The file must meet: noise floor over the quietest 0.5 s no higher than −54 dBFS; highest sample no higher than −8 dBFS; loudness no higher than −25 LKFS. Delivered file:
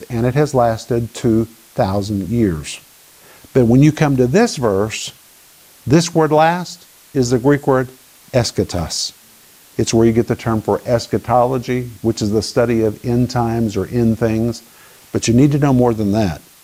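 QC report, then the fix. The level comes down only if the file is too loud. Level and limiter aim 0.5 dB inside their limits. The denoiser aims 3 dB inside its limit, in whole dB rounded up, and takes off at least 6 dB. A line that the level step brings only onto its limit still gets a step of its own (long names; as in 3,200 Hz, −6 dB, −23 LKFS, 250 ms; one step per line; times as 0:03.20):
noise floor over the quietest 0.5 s −46 dBFS: out of spec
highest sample −1.5 dBFS: out of spec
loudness −16.5 LKFS: out of spec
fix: level −9 dB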